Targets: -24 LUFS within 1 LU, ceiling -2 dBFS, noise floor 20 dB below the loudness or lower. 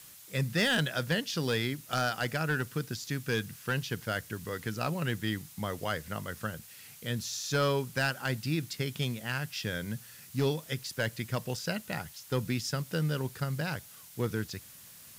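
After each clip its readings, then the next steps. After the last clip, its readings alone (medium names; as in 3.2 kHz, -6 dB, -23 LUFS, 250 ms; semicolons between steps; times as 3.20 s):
clipped samples 0.3%; clipping level -21.0 dBFS; noise floor -52 dBFS; noise floor target -53 dBFS; loudness -33.0 LUFS; peak level -21.0 dBFS; loudness target -24.0 LUFS
-> clip repair -21 dBFS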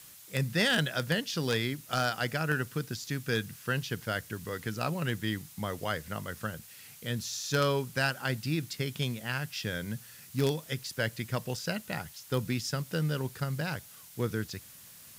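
clipped samples 0.0%; noise floor -52 dBFS; noise floor target -53 dBFS
-> noise print and reduce 6 dB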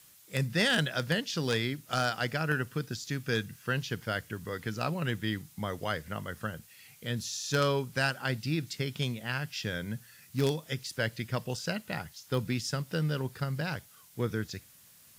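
noise floor -58 dBFS; loudness -32.5 LUFS; peak level -12.0 dBFS; loudness target -24.0 LUFS
-> trim +8.5 dB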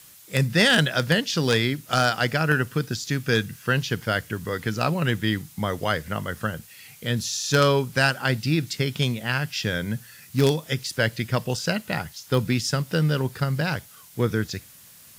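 loudness -24.0 LUFS; peak level -3.5 dBFS; noise floor -49 dBFS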